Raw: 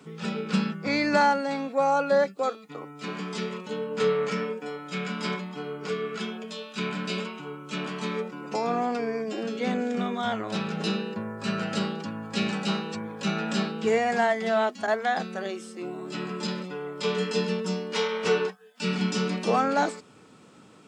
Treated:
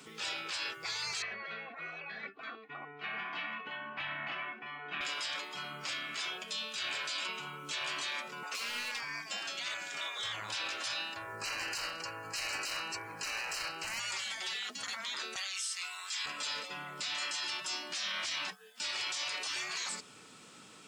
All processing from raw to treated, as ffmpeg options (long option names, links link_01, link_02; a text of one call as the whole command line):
ffmpeg -i in.wav -filter_complex "[0:a]asettb=1/sr,asplit=3[link_01][link_02][link_03];[link_01]atrim=end=1.224[link_04];[link_02]atrim=start=1.22:end=5.01,asetpts=PTS-STARTPTS,afade=type=in:duration=0.004:curve=qsin,afade=type=out:start_time=3.786:duration=0.004:curve=qsin,lowpass=frequency=2300:width=0.5412,lowpass=frequency=2300:width=1.3066,aecho=1:1:2.7:0.88,atrim=end_sample=167139[link_05];[link_03]atrim=start=5.006[link_06];[link_04][link_05]acrossfade=duration=0.004:curve1=hsin:curve2=qsin[link_07];[link_07][link_06]acrossfade=duration=0.004:curve1=qsin:curve2=hsin,asettb=1/sr,asplit=3[link_08][link_09][link_10];[link_08]atrim=end=8.434[link_11];[link_09]atrim=start=8.43:end=9.03,asetpts=PTS-STARTPTS,afade=type=in:duration=0.004:curve=qsin,afade=type=out:start_time=0.596:duration=0.004:curve=qsin,highpass=frequency=870:width_type=q:width=3,asoftclip=type=hard:threshold=-25dB[link_12];[link_10]atrim=start=9.026[link_13];[link_11][link_12]acrossfade=duration=0.004:curve1=hsin:curve2=qsin[link_14];[link_14][link_13]acrossfade=duration=0.004:curve1=qsin:curve2=hsin,asettb=1/sr,asplit=3[link_15][link_16][link_17];[link_15]atrim=end=11.364[link_18];[link_16]atrim=start=11.36:end=14,asetpts=PTS-STARTPTS,afade=type=in:duration=0.004:curve=qsin,afade=type=out:start_time=2.636:duration=0.004:curve=qsin,asoftclip=type=hard:threshold=-26.5dB,asuperstop=centerf=3500:order=4:qfactor=2.9[link_19];[link_17]atrim=start=13.996[link_20];[link_18][link_19]acrossfade=duration=0.004:curve1=hsin:curve2=qsin[link_21];[link_21][link_20]acrossfade=duration=0.004:curve1=qsin:curve2=hsin,asettb=1/sr,asplit=3[link_22][link_23][link_24];[link_22]atrim=end=15.364[link_25];[link_23]atrim=start=15.36:end=16.26,asetpts=PTS-STARTPTS,afade=type=in:duration=0.004:curve=qsin,afade=type=out:start_time=0.896:duration=0.004:curve=qsin,highpass=frequency=1000:width=0.5412,highpass=frequency=1000:width=1.3066,equalizer=frequency=4800:width=0.35:gain=10.5[link_26];[link_24]atrim=start=16.256[link_27];[link_25][link_26]acrossfade=duration=0.004:curve1=hsin:curve2=qsin[link_28];[link_28][link_27]acrossfade=duration=0.004:curve1=qsin:curve2=hsin,afftfilt=real='re*lt(hypot(re,im),0.0631)':imag='im*lt(hypot(re,im),0.0631)':win_size=1024:overlap=0.75,tiltshelf=frequency=1300:gain=-7.5,alimiter=level_in=4dB:limit=-24dB:level=0:latency=1:release=12,volume=-4dB" out.wav